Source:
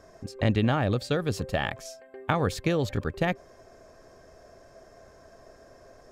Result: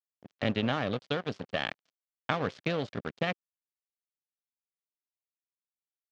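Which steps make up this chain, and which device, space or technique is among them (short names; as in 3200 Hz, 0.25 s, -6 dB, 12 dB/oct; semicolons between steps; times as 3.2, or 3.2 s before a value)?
blown loudspeaker (crossover distortion -33 dBFS; speaker cabinet 160–5600 Hz, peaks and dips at 350 Hz -5 dB, 900 Hz -4 dB, 3100 Hz +4 dB); gain -1 dB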